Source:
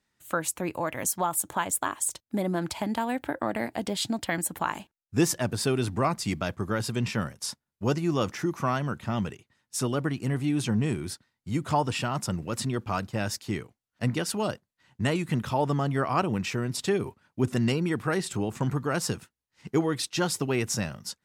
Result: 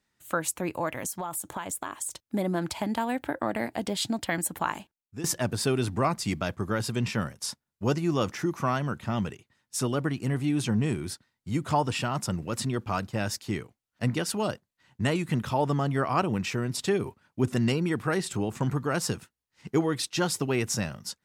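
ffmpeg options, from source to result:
ffmpeg -i in.wav -filter_complex "[0:a]asettb=1/sr,asplit=3[link_01][link_02][link_03];[link_01]atrim=end=0.914[link_04];[link_02]atrim=start=0.91:end=2.22,asetpts=PTS-STARTPTS,afade=type=in:duration=0.004:curve=qsin,afade=type=out:start_time=1.306:duration=0.004:curve=qsin,acompressor=threshold=-29dB:ratio=6:attack=3.2:release=140:knee=1:detection=peak[link_05];[link_03]atrim=start=2.216[link_06];[link_04][link_05]acrossfade=duration=0.004:curve1=hsin:curve2=qsin[link_07];[link_07][link_06]acrossfade=duration=0.004:curve1=qsin:curve2=hsin,asplit=2[link_08][link_09];[link_08]atrim=end=5.24,asetpts=PTS-STARTPTS,afade=type=out:start_time=4.71:duration=0.53:silence=0.125893[link_10];[link_09]atrim=start=5.24,asetpts=PTS-STARTPTS,afade=type=in:duration=0.004:curve=hsin:silence=0.125893[link_11];[link_10][link_11]concat=n=2:v=0:a=1" out.wav

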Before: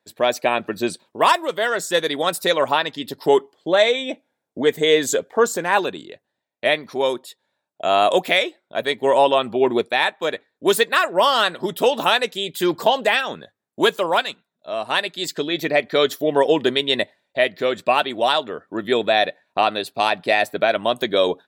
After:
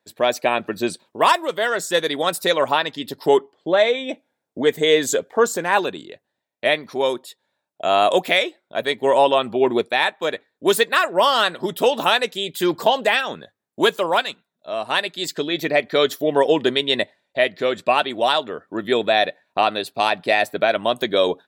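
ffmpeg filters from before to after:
ffmpeg -i in.wav -filter_complex "[0:a]asettb=1/sr,asplit=3[link_01][link_02][link_03];[link_01]atrim=end=3.374[link_04];[link_02]atrim=start=3.37:end=4.09,asetpts=PTS-STARTPTS,afade=type=in:duration=0.004:curve=qsin,afade=type=out:start_time=0.716:duration=0.004:curve=qsin,lowpass=frequency=2900:poles=1[link_05];[link_03]atrim=start=4.086[link_06];[link_04][link_05]acrossfade=duration=0.004:curve1=hsin:curve2=qsin[link_07];[link_07][link_06]acrossfade=duration=0.004:curve1=qsin:curve2=hsin,asettb=1/sr,asplit=3[link_08][link_09][link_10];[link_08]atrim=end=16.524[link_11];[link_09]atrim=start=16.52:end=18.1,asetpts=PTS-STARTPTS,afade=type=in:duration=0.004:curve=qsin,afade=type=out:start_time=1.576:duration=0.004:curve=qsin,lowpass=12000[link_12];[link_10]atrim=start=18.096[link_13];[link_11][link_12]acrossfade=duration=0.004:curve1=hsin:curve2=qsin[link_14];[link_14][link_13]acrossfade=duration=0.004:curve1=qsin:curve2=hsin" out.wav

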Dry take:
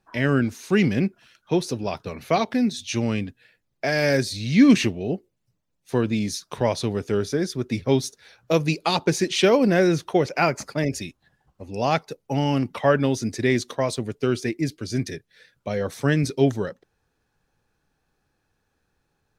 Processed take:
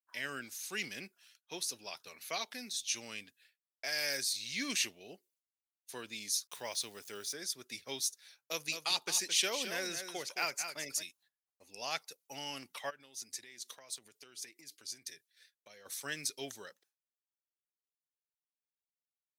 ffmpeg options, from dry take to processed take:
ffmpeg -i in.wav -filter_complex "[0:a]asettb=1/sr,asplit=3[link_01][link_02][link_03];[link_01]atrim=end=6.474[link_04];[link_02]atrim=start=6.47:end=7.33,asetpts=PTS-STARTPTS,afade=type=in:duration=0.004:curve=qsin,afade=type=out:start_time=0.856:duration=0.004:curve=qsin,aeval=exprs='val(0)*gte(abs(val(0)),0.00447)':channel_layout=same[link_05];[link_03]atrim=start=7.326[link_06];[link_04][link_05]acrossfade=duration=0.004:curve1=hsin:curve2=qsin[link_07];[link_07][link_06]acrossfade=duration=0.004:curve1=qsin:curve2=hsin,asplit=3[link_08][link_09][link_10];[link_08]afade=type=out:start_time=8.58:duration=0.02[link_11];[link_09]aecho=1:1:217:0.376,afade=type=in:start_time=8.58:duration=0.02,afade=type=out:start_time=11.02:duration=0.02[link_12];[link_10]afade=type=in:start_time=11.02:duration=0.02[link_13];[link_11][link_12][link_13]amix=inputs=3:normalize=0,asplit=3[link_14][link_15][link_16];[link_14]afade=type=out:start_time=12.89:duration=0.02[link_17];[link_15]acompressor=threshold=-32dB:ratio=10:attack=3.2:release=140:knee=1:detection=peak,afade=type=in:start_time=12.89:duration=0.02,afade=type=out:start_time=15.85:duration=0.02[link_18];[link_16]afade=type=in:start_time=15.85:duration=0.02[link_19];[link_17][link_18][link_19]amix=inputs=3:normalize=0,agate=range=-33dB:threshold=-49dB:ratio=3:detection=peak,aderivative" out.wav

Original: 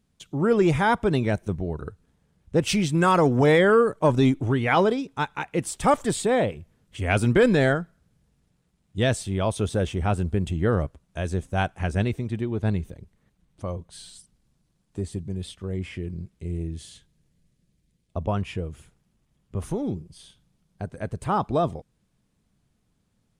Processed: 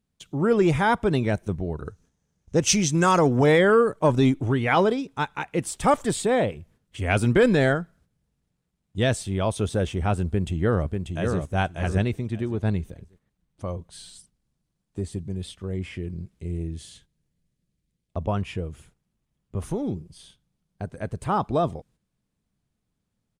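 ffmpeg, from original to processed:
ffmpeg -i in.wav -filter_complex "[0:a]asettb=1/sr,asplit=3[link_01][link_02][link_03];[link_01]atrim=end=1.854[link_04];[link_02]atrim=start=1.85:end=3.19,asetpts=PTS-STARTPTS,afade=type=in:duration=0.004:curve=qsin,afade=type=out:start_time=1.336:duration=0.004:curve=qsin,equalizer=frequency=6200:width=2.8:gain=14[link_05];[link_03]atrim=start=3.186[link_06];[link_04][link_05]acrossfade=duration=0.004:curve1=hsin:curve2=qsin[link_07];[link_07][link_06]acrossfade=duration=0.004:curve1=qsin:curve2=hsin,asplit=2[link_08][link_09];[link_09]afade=type=in:start_time=10.26:duration=0.01,afade=type=out:start_time=11.39:duration=0.01,aecho=0:1:590|1180|1770:0.595662|0.119132|0.0238265[link_10];[link_08][link_10]amix=inputs=2:normalize=0,agate=range=-8dB:threshold=-55dB:ratio=16:detection=peak" out.wav

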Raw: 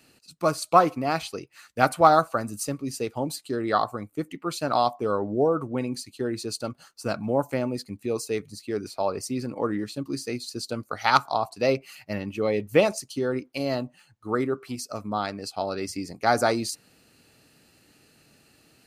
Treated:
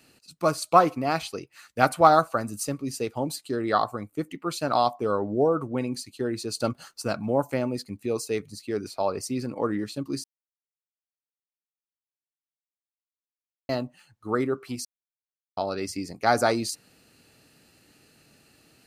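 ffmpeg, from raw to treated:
ffmpeg -i in.wav -filter_complex "[0:a]asplit=7[link_01][link_02][link_03][link_04][link_05][link_06][link_07];[link_01]atrim=end=6.572[link_08];[link_02]atrim=start=6.568:end=7.022,asetpts=PTS-STARTPTS,volume=5.5dB[link_09];[link_03]atrim=start=7.018:end=10.24,asetpts=PTS-STARTPTS,afade=type=out:start_time=3.218:duration=0.004:curve=hsin[link_10];[link_04]atrim=start=10.24:end=13.69,asetpts=PTS-STARTPTS,volume=0[link_11];[link_05]atrim=start=13.69:end=14.85,asetpts=PTS-STARTPTS,afade=type=in:duration=0.004:curve=hsin,afade=type=out:start_time=1.156:duration=0.004:curve=hsin[link_12];[link_06]atrim=start=14.85:end=15.57,asetpts=PTS-STARTPTS,volume=0[link_13];[link_07]atrim=start=15.57,asetpts=PTS-STARTPTS,afade=type=in:duration=0.004:curve=hsin[link_14];[link_08][link_09]acrossfade=duration=0.004:curve1=hsin:curve2=hsin[link_15];[link_10][link_11][link_12][link_13][link_14]concat=n=5:v=0:a=1[link_16];[link_15][link_16]acrossfade=duration=0.004:curve1=hsin:curve2=hsin" out.wav

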